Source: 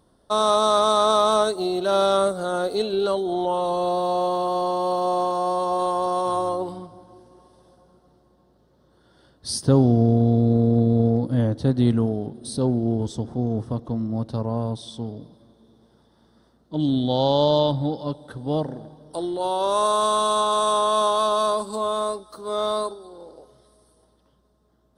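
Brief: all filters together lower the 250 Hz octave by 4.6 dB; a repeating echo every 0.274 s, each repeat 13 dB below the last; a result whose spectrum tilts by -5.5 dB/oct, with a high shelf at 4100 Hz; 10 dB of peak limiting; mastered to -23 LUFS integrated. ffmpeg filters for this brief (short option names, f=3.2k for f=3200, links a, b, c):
-af "equalizer=f=250:t=o:g=-5.5,highshelf=f=4.1k:g=4,alimiter=limit=-16.5dB:level=0:latency=1,aecho=1:1:274|548|822:0.224|0.0493|0.0108,volume=3.5dB"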